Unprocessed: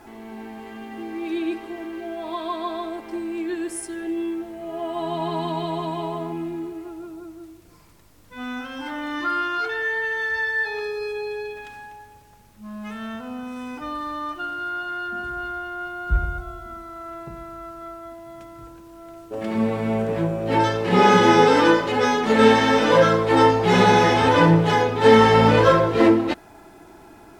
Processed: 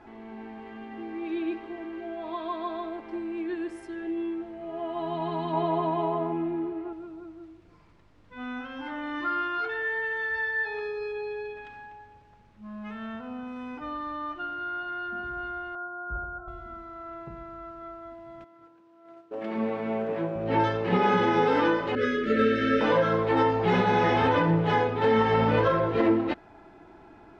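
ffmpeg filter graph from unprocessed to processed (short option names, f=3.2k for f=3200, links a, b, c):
-filter_complex "[0:a]asettb=1/sr,asplit=3[a][b][c];[a]atrim=end=5.534[d];[b]atrim=start=5.53:end=6.93,asetpts=PTS-STARTPTS,afade=t=in:d=0.004:c=qsin,afade=t=out:st=1.396:d=0.004:c=qsin,lowpass=4.2k,equalizer=f=650:w=0.45:g=6.5[e];[c]atrim=start=6.926[f];[d][e]acrossfade=d=0.004:c1=hsin:c2=qsin[g];[g][f]acrossfade=d=0.004:c1=qsin:c2=hsin,asettb=1/sr,asplit=3[h][i][j];[h]atrim=end=15.754[k];[i]atrim=start=15.75:end=16.48,asetpts=PTS-STARTPTS,afade=t=in:d=0.004:c=qsin,afade=t=out:st=0.726:d=0.004:c=qsin,asuperstop=centerf=3100:order=20:qfactor=0.82,bass=f=250:g=-13,treble=f=4k:g=-12[l];[j]atrim=start=16.476[m];[k][l]acrossfade=d=0.004:c1=hsin:c2=qsin[n];[n][m]acrossfade=d=0.004:c1=qsin:c2=hsin,asettb=1/sr,asplit=3[o][p][q];[o]atrim=end=18.444[r];[p]atrim=start=18.44:end=20.36,asetpts=PTS-STARTPTS,afade=t=in:d=0.004:c=qsin,afade=t=out:st=1.916:d=0.004:c=qsin,highpass=230,agate=range=-8dB:threshold=-42dB:ratio=16:release=100:detection=peak[s];[q]atrim=start=20.356[t];[r][s]acrossfade=d=0.004:c1=hsin:c2=qsin[u];[u][t]acrossfade=d=0.004:c1=qsin:c2=hsin,asettb=1/sr,asplit=3[v][w][x];[v]atrim=end=21.954[y];[w]atrim=start=21.95:end=22.81,asetpts=PTS-STARTPTS,afade=t=in:d=0.004:c=qsin,afade=t=out:st=0.856:d=0.004:c=qsin,asuperstop=centerf=890:order=20:qfactor=1.4,aecho=1:1:3:0.36,atrim=end_sample=37926,adynamicequalizer=threshold=0.0316:dfrequency=2100:dqfactor=0.7:tfrequency=2100:tqfactor=0.7:attack=5:release=100:ratio=0.375:range=2:mode=cutabove:tftype=highshelf[z];[x]atrim=start=22.806[aa];[y][z]acrossfade=d=0.004:c1=hsin:c2=qsin[ab];[ab][aa]acrossfade=d=0.004:c1=qsin:c2=hsin,lowpass=3k,alimiter=limit=-8.5dB:level=0:latency=1:release=187,volume=-4.5dB"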